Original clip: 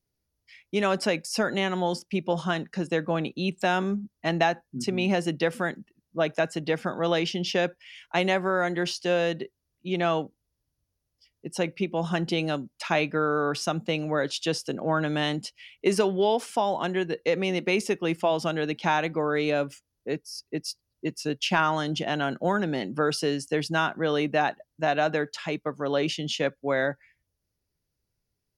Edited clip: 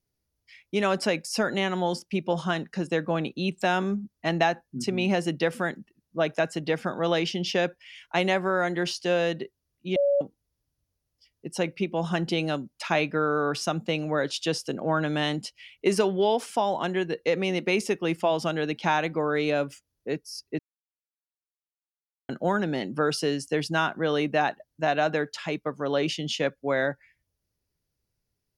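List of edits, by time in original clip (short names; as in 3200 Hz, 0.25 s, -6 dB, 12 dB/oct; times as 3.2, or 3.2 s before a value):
9.96–10.21 bleep 566 Hz -19 dBFS
20.59–22.29 mute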